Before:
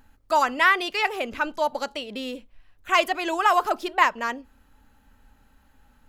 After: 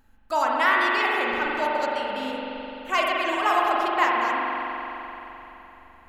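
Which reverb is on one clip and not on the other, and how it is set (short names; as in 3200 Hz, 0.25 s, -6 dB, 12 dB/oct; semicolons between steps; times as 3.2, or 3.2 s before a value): spring tank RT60 3.6 s, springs 42 ms, chirp 70 ms, DRR -3.5 dB; gain -4.5 dB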